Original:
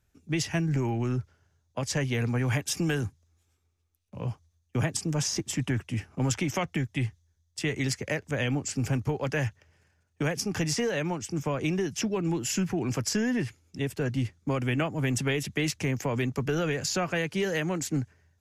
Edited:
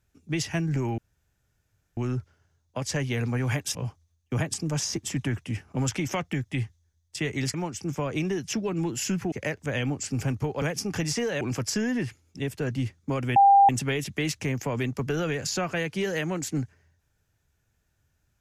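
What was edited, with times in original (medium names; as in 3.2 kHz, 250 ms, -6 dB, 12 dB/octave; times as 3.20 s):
0.98 s: insert room tone 0.99 s
2.76–4.18 s: delete
9.27–10.23 s: delete
11.02–12.80 s: move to 7.97 s
14.75–15.08 s: bleep 796 Hz -12.5 dBFS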